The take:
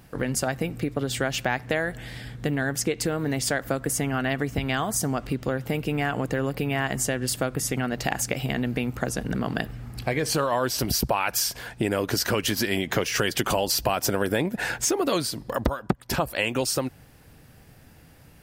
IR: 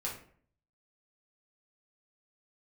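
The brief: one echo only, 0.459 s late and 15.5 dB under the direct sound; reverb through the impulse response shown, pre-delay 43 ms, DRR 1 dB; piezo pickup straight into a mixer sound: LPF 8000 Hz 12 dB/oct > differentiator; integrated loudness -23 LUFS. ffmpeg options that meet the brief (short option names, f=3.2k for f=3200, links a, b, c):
-filter_complex "[0:a]aecho=1:1:459:0.168,asplit=2[a][b];[1:a]atrim=start_sample=2205,adelay=43[c];[b][c]afir=irnorm=-1:irlink=0,volume=-3dB[d];[a][d]amix=inputs=2:normalize=0,lowpass=8k,aderivative,volume=10dB"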